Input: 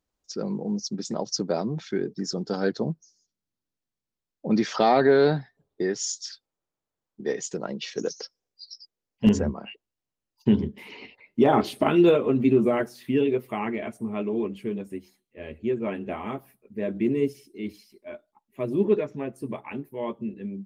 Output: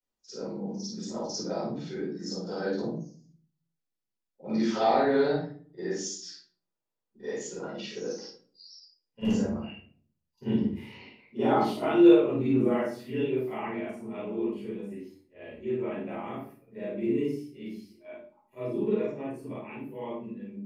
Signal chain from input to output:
every overlapping window played backwards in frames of 110 ms
low-shelf EQ 170 Hz −9.5 dB
rectangular room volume 410 cubic metres, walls furnished, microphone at 4.7 metres
level −9 dB

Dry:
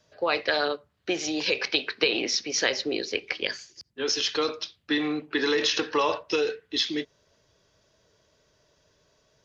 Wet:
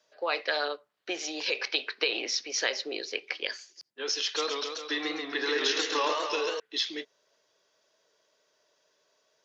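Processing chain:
high-pass filter 440 Hz 12 dB per octave
0:04.22–0:06.60: feedback echo with a swinging delay time 136 ms, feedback 64%, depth 155 cents, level −4 dB
level −3.5 dB

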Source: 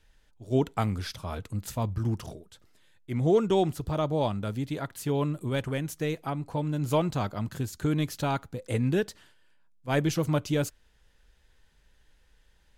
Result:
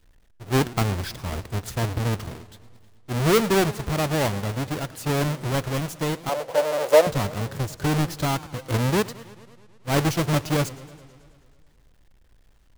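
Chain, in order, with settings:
each half-wave held at its own peak
0:06.29–0:07.07: high-pass with resonance 540 Hz, resonance Q 4.9
feedback echo with a swinging delay time 108 ms, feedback 69%, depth 196 cents, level −19 dB

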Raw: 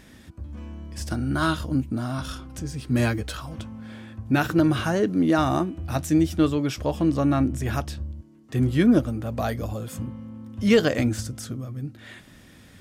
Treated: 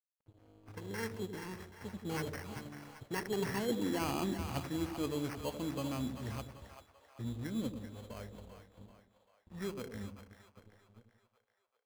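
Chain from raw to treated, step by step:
gliding playback speed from 133% → 83%
source passing by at 0:03.65, 32 m/s, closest 7 metres
EQ curve with evenly spaced ripples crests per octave 0.93, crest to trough 6 dB
reversed playback
downward compressor 10 to 1, threshold −39 dBFS, peak gain reduction 22.5 dB
reversed playback
decimation without filtering 12×
dead-zone distortion −58 dBFS
on a send: echo with a time of its own for lows and highs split 600 Hz, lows 88 ms, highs 390 ms, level −8 dB
on the sum: one half of a high-frequency compander decoder only
level +7 dB

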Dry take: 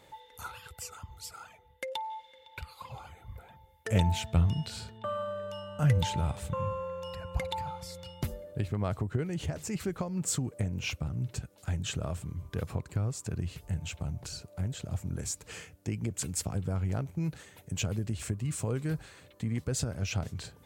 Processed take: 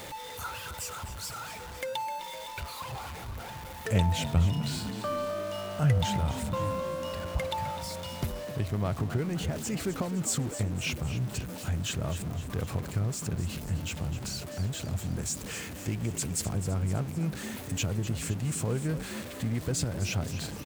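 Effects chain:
converter with a step at zero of −37.5 dBFS
echo with shifted repeats 256 ms, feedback 56%, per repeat +55 Hz, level −12 dB

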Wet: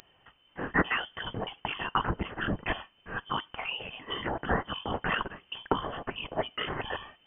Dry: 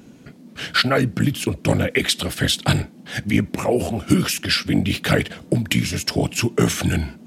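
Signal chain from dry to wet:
0:01.14–0:01.60: mu-law and A-law mismatch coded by mu
first difference
voice inversion scrambler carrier 3,300 Hz
level +6 dB

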